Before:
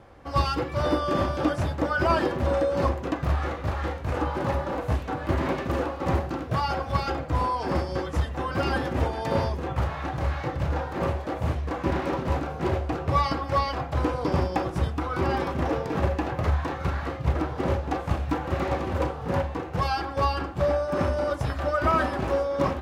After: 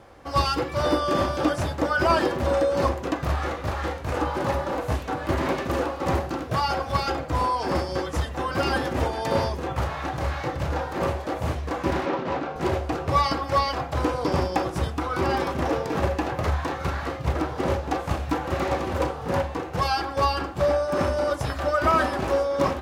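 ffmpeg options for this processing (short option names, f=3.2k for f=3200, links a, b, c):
-filter_complex "[0:a]asettb=1/sr,asplit=3[a][b][c];[a]atrim=end=12.054[d];[b]atrim=start=12.05:end=12.56,asetpts=PTS-STARTPTS,afade=t=in:d=0.004:c=qsin,afade=t=out:st=0.506:d=0.004:c=qsin,highpass=160,lowpass=3.9k[e];[c]atrim=start=12.556[f];[d][e]acrossfade=d=0.004:c1=hsin:c2=qsin[g];[g][f]acrossfade=d=0.004:c1=qsin:c2=hsin,bass=f=250:g=-4,treble=f=4k:g=5,volume=2.5dB"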